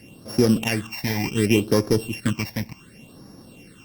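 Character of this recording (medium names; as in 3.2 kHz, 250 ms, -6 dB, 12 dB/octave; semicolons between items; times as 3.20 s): a buzz of ramps at a fixed pitch in blocks of 16 samples; phasing stages 8, 0.68 Hz, lowest notch 370–2800 Hz; Opus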